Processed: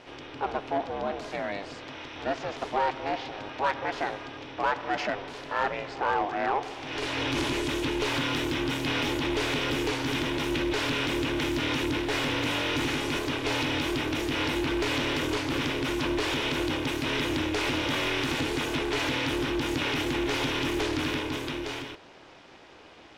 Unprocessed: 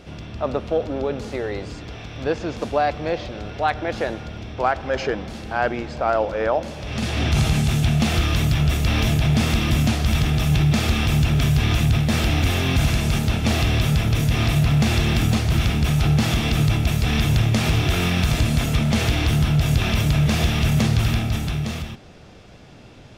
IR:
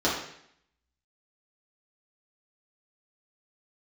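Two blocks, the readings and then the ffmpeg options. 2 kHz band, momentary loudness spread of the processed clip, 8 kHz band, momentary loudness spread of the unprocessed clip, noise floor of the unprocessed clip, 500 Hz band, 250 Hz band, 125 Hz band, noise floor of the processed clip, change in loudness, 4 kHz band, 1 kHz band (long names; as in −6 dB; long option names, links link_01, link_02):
−2.5 dB, 6 LU, −8.0 dB, 9 LU, −43 dBFS, −4.5 dB, −6.5 dB, −19.0 dB, −50 dBFS, −8.0 dB, −3.5 dB, −3.0 dB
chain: -filter_complex "[0:a]aeval=exprs='val(0)*sin(2*PI*200*n/s)':channel_layout=same,asplit=2[link_01][link_02];[link_02]highpass=frequency=720:poles=1,volume=16dB,asoftclip=type=tanh:threshold=-8dB[link_03];[link_01][link_03]amix=inputs=2:normalize=0,lowpass=frequency=2000:poles=1,volume=-6dB,tiltshelf=frequency=870:gain=-3,volume=-7dB"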